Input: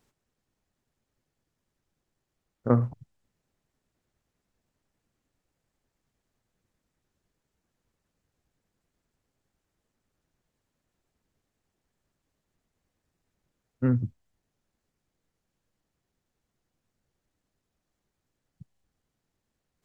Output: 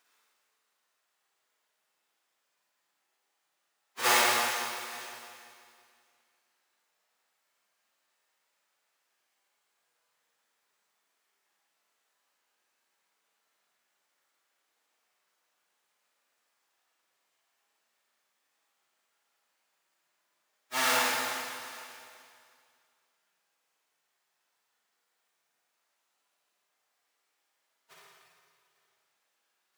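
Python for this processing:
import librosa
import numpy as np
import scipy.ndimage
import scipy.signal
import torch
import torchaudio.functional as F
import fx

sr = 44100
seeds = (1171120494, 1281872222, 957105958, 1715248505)

y = fx.halfwave_hold(x, sr)
y = scipy.signal.sosfilt(scipy.signal.butter(2, 1000.0, 'highpass', fs=sr, output='sos'), y)
y = fx.quant_float(y, sr, bits=8)
y = fx.stretch_vocoder_free(y, sr, factor=1.5)
y = y + 10.0 ** (-23.0 / 20.0) * np.pad(y, (int(849 * sr / 1000.0), 0))[:len(y)]
y = fx.rev_schroeder(y, sr, rt60_s=2.2, comb_ms=38, drr_db=-6.0)
y = y * 10.0 ** (1.0 / 20.0)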